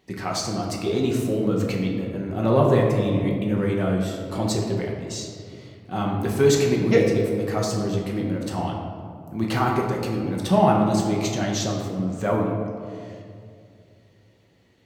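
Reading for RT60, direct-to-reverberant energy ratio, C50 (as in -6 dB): 2.3 s, -1.5 dB, 2.5 dB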